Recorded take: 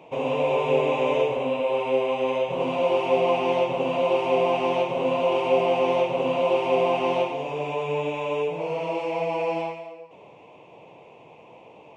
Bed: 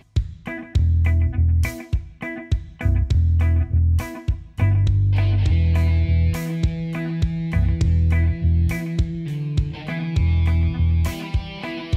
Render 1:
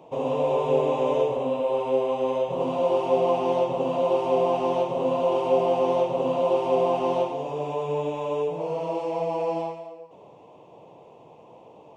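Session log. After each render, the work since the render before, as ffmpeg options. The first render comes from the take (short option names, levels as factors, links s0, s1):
-af "equalizer=f=2300:t=o:w=0.75:g=-13.5,bandreject=f=1500:w=26"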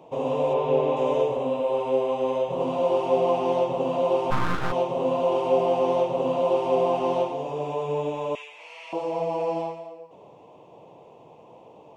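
-filter_complex "[0:a]asplit=3[s0][s1][s2];[s0]afade=t=out:st=0.53:d=0.02[s3];[s1]lowpass=4400,afade=t=in:st=0.53:d=0.02,afade=t=out:st=0.95:d=0.02[s4];[s2]afade=t=in:st=0.95:d=0.02[s5];[s3][s4][s5]amix=inputs=3:normalize=0,asplit=3[s6][s7][s8];[s6]afade=t=out:st=4.3:d=0.02[s9];[s7]aeval=exprs='abs(val(0))':c=same,afade=t=in:st=4.3:d=0.02,afade=t=out:st=4.71:d=0.02[s10];[s8]afade=t=in:st=4.71:d=0.02[s11];[s9][s10][s11]amix=inputs=3:normalize=0,asettb=1/sr,asplit=3[s12][s13][s14];[s12]atrim=end=8.354[s15];[s13]atrim=start=8.35:end=8.93,asetpts=PTS-STARTPTS,afade=t=in:d=0.004:c=qsin,afade=t=out:st=0.576:d=0.004:c=qsin,highpass=f=2100:t=q:w=4[s16];[s14]atrim=start=8.926[s17];[s15][s16]acrossfade=d=0.004:c1=hsin:c2=qsin[s18];[s18][s17]acrossfade=d=0.004:c1=qsin:c2=hsin"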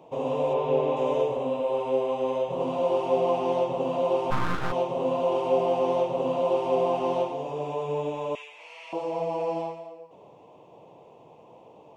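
-af "volume=0.794"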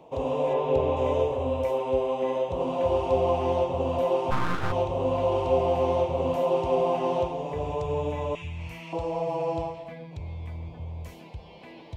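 -filter_complex "[1:a]volume=0.119[s0];[0:a][s0]amix=inputs=2:normalize=0"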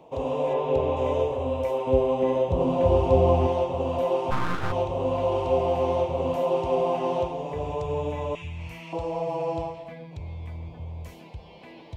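-filter_complex "[0:a]asettb=1/sr,asplit=3[s0][s1][s2];[s0]atrim=end=1.874[s3];[s1]atrim=start=1.87:end=3.47,asetpts=PTS-STARTPTS,afade=t=in:d=0.004:c=qsin,afade=t=out:st=1.596:d=0.004:c=qsin,lowshelf=f=330:g=11.5[s4];[s2]atrim=start=3.466[s5];[s3][s4]acrossfade=d=0.004:c1=hsin:c2=qsin[s6];[s6][s5]acrossfade=d=0.004:c1=qsin:c2=hsin"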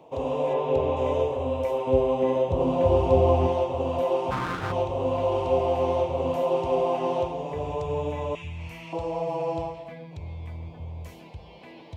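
-af "highpass=46,bandreject=f=58.3:t=h:w=4,bandreject=f=116.6:t=h:w=4,bandreject=f=174.9:t=h:w=4,bandreject=f=233.2:t=h:w=4"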